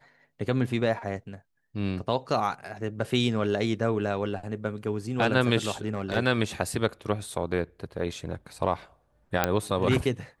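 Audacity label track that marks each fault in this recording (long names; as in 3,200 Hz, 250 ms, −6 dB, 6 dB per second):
5.850000	6.170000	clipping −21.5 dBFS
9.440000	9.440000	click −7 dBFS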